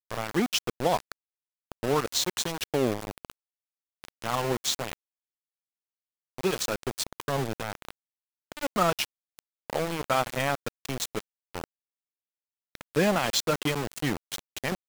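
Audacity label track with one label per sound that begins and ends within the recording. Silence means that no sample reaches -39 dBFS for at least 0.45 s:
1.720000	3.310000	sound
4.040000	4.930000	sound
6.380000	7.910000	sound
8.520000	11.640000	sound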